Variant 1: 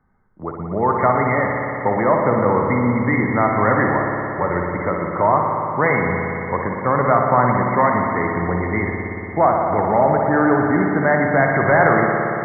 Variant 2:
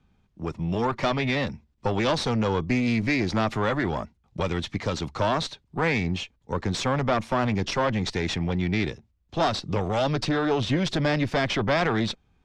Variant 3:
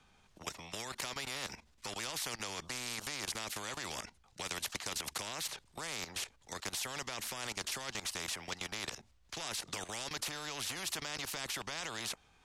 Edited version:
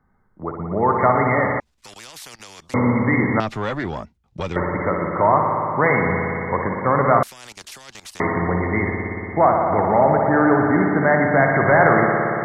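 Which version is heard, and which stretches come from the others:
1
1.6–2.74 from 3
3.4–4.56 from 2
7.23–8.2 from 3

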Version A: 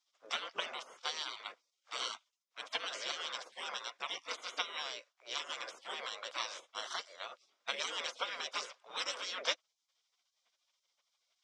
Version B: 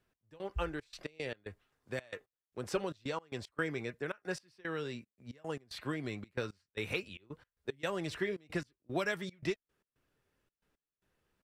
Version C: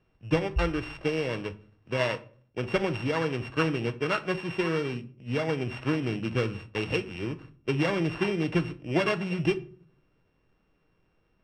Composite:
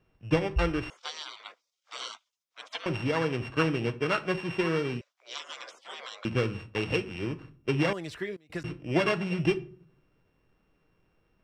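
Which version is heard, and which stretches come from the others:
C
0.9–2.86 from A
5.01–6.25 from A
7.93–8.64 from B

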